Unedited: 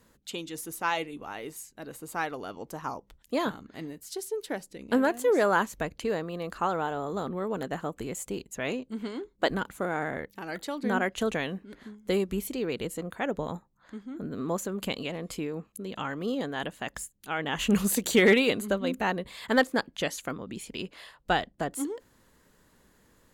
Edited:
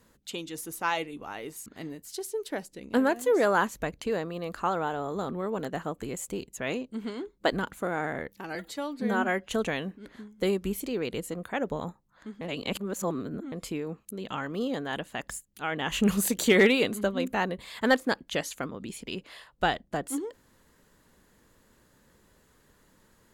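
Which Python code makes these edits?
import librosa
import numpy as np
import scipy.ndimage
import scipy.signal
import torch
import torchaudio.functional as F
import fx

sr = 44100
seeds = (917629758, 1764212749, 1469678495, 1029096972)

y = fx.edit(x, sr, fx.cut(start_s=1.66, length_s=1.98),
    fx.stretch_span(start_s=10.53, length_s=0.62, factor=1.5),
    fx.reverse_span(start_s=14.08, length_s=1.11), tone=tone)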